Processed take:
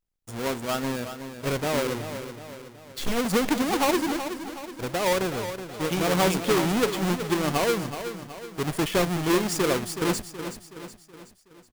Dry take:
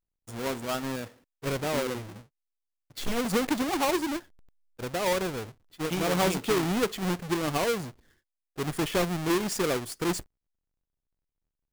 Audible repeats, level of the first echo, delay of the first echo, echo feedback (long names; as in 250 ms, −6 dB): 5, −10.0 dB, 373 ms, 49%